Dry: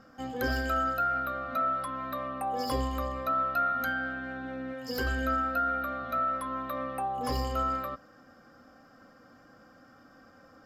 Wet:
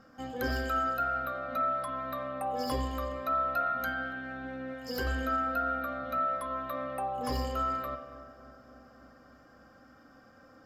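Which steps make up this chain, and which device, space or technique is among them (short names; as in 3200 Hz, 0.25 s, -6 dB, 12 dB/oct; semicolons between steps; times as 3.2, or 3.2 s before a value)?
dub delay into a spring reverb (darkening echo 0.283 s, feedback 75%, low-pass 1300 Hz, level -16.5 dB; spring tank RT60 1.3 s, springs 44 ms, chirp 55 ms, DRR 7 dB); gain -2 dB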